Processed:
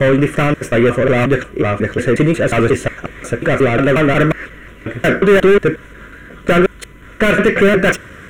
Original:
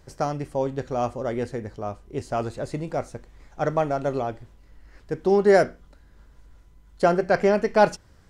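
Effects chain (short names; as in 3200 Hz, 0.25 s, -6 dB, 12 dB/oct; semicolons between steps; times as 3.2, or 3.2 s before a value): slices in reverse order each 0.18 s, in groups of 4; overdrive pedal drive 33 dB, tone 2100 Hz, clips at -5.5 dBFS; fixed phaser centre 2000 Hz, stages 4; gain +6.5 dB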